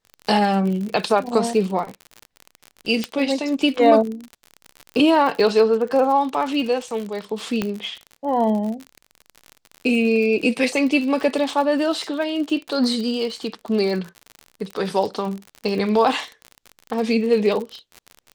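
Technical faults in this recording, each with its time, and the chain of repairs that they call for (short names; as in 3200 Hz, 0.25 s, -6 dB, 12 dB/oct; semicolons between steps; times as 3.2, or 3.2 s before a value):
crackle 52/s -27 dBFS
3.04 pop -9 dBFS
7.62 pop -9 dBFS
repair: de-click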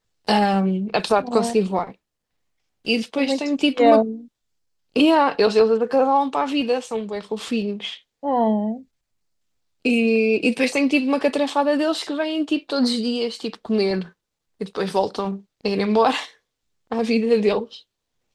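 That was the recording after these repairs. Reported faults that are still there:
3.04 pop
7.62 pop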